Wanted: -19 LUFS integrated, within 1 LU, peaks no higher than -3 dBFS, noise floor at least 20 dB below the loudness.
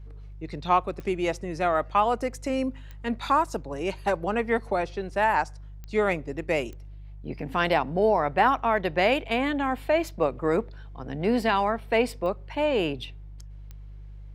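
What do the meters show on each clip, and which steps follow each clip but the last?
clicks 6; hum 50 Hz; harmonics up to 150 Hz; hum level -39 dBFS; loudness -26.0 LUFS; peak -7.5 dBFS; loudness target -19.0 LUFS
-> de-click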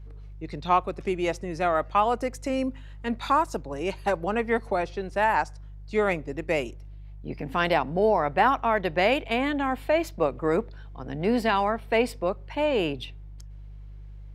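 clicks 0; hum 50 Hz; harmonics up to 150 Hz; hum level -39 dBFS
-> de-hum 50 Hz, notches 3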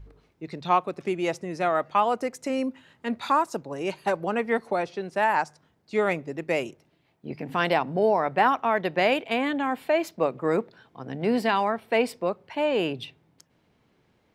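hum none; loudness -26.0 LUFS; peak -7.5 dBFS; loudness target -19.0 LUFS
-> gain +7 dB; limiter -3 dBFS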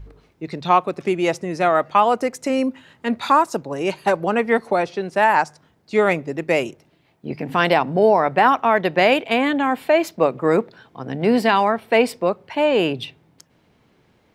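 loudness -19.5 LUFS; peak -3.0 dBFS; noise floor -60 dBFS

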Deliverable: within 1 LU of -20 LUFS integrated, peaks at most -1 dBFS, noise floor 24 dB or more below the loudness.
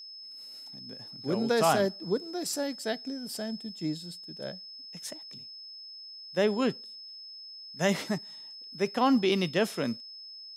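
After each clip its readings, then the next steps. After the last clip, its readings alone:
steady tone 5200 Hz; tone level -43 dBFS; loudness -30.0 LUFS; peak -11.5 dBFS; loudness target -20.0 LUFS
-> notch 5200 Hz, Q 30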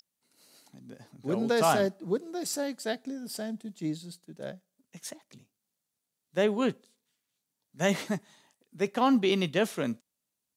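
steady tone none; loudness -30.0 LUFS; peak -12.0 dBFS; loudness target -20.0 LUFS
-> gain +10 dB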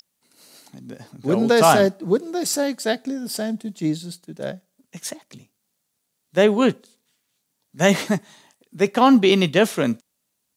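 loudness -20.0 LUFS; peak -2.0 dBFS; noise floor -75 dBFS

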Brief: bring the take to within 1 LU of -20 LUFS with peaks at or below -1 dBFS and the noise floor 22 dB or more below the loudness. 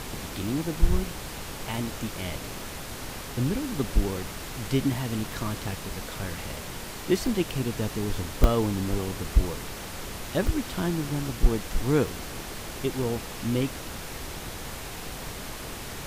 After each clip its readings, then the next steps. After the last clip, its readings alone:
dropouts 8; longest dropout 1.1 ms; noise floor -38 dBFS; noise floor target -53 dBFS; loudness -30.5 LUFS; peak -8.0 dBFS; loudness target -20.0 LUFS
-> interpolate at 0.47/6.37/7.27/8.44/9.26/10.47/11.29/12.07, 1.1 ms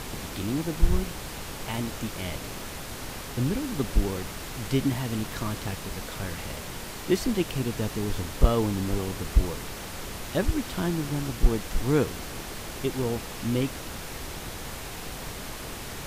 dropouts 0; noise floor -38 dBFS; noise floor target -53 dBFS
-> noise print and reduce 15 dB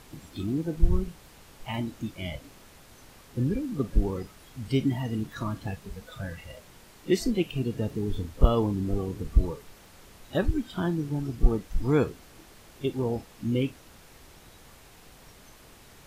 noise floor -53 dBFS; loudness -30.0 LUFS; peak -8.0 dBFS; loudness target -20.0 LUFS
-> gain +10 dB; limiter -1 dBFS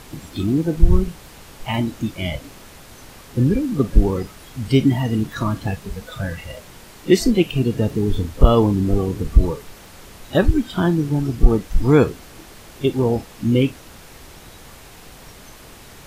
loudness -20.0 LUFS; peak -1.0 dBFS; noise floor -43 dBFS

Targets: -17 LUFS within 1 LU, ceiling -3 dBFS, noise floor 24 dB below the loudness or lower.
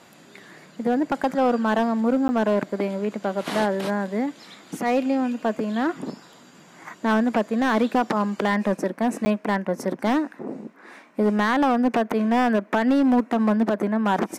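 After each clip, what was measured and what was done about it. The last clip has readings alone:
clipped 1.7%; flat tops at -14.0 dBFS; dropouts 2; longest dropout 10 ms; loudness -23.0 LUFS; peak -14.0 dBFS; loudness target -17.0 LUFS
-> clip repair -14 dBFS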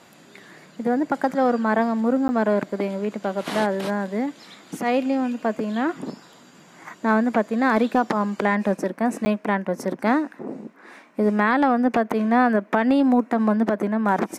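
clipped 0.0%; dropouts 2; longest dropout 10 ms
-> interpolate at 2.28/9.25, 10 ms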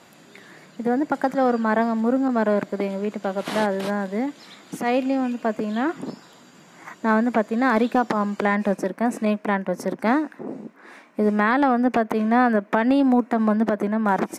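dropouts 0; loudness -22.5 LUFS; peak -6.0 dBFS; loudness target -17.0 LUFS
-> gain +5.5 dB; limiter -3 dBFS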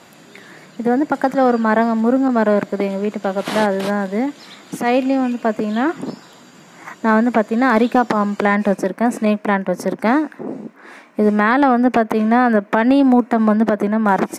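loudness -17.0 LUFS; peak -3.0 dBFS; noise floor -45 dBFS

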